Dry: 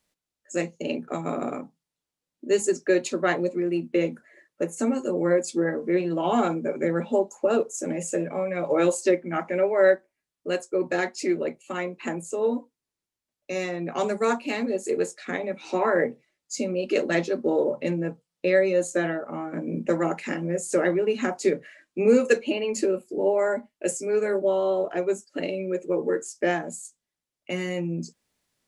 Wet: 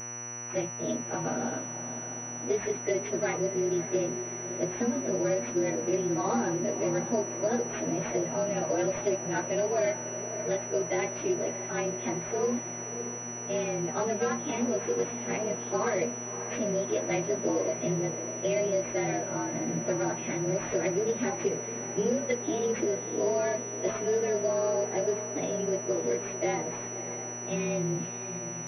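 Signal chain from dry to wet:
partials spread apart or drawn together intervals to 110%
downward compressor, threshold −25 dBFS, peak gain reduction 10 dB
hum with harmonics 120 Hz, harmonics 25, −45 dBFS −3 dB per octave
on a send: feedback delay with all-pass diffusion 604 ms, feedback 63%, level −11 dB
on the sum: switching amplifier with a slow clock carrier 5,900 Hz

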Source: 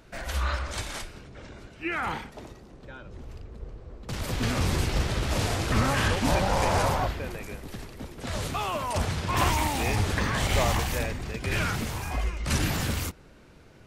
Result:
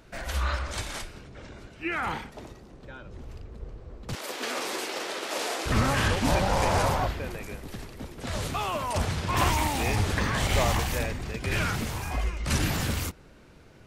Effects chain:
0:04.15–0:05.66: high-pass filter 340 Hz 24 dB per octave

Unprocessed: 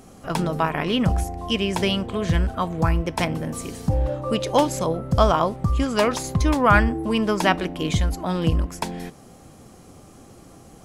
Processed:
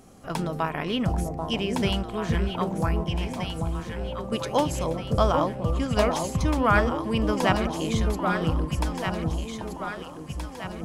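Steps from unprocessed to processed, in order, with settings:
0:03.04–0:04.32: tuned comb filter 58 Hz, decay 1.2 s, harmonics all, mix 80%
on a send: delay that swaps between a low-pass and a high-pass 787 ms, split 890 Hz, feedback 68%, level −3 dB
on the sum: level −5 dB

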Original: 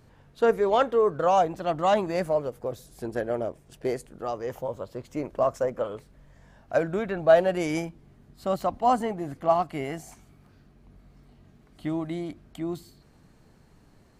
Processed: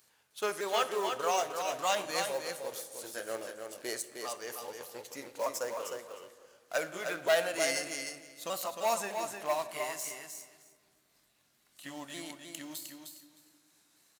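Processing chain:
pitch shifter swept by a sawtooth −2.5 semitones, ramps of 607 ms
leveller curve on the samples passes 1
first difference
repeating echo 308 ms, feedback 15%, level −6 dB
on a send at −12 dB: convolution reverb RT60 1.9 s, pre-delay 6 ms
on the sum: level +8.5 dB

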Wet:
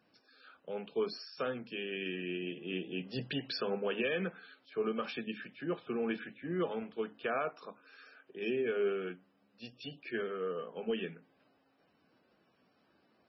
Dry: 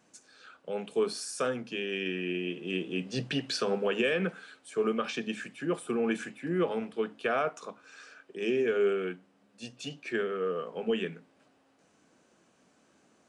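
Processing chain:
level −5 dB
MP3 16 kbit/s 24,000 Hz

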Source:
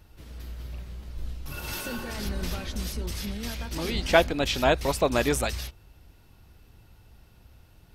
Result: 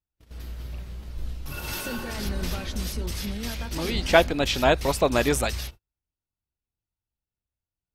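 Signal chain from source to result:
noise gate −42 dBFS, range −40 dB
level +2 dB

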